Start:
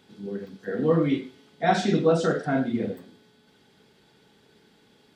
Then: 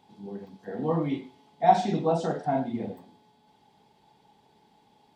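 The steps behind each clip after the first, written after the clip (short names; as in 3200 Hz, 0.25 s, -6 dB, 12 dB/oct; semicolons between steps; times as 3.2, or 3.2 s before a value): EQ curve 160 Hz 0 dB, 510 Hz -3 dB, 860 Hz +13 dB, 1400 Hz -9 dB, 2100 Hz -3 dB; gain -4 dB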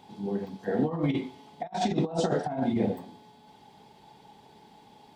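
negative-ratio compressor -30 dBFS, ratio -0.5; gain +3 dB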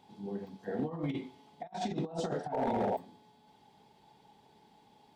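painted sound noise, 2.52–2.97, 360–950 Hz -24 dBFS; overloaded stage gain 18 dB; gain -8 dB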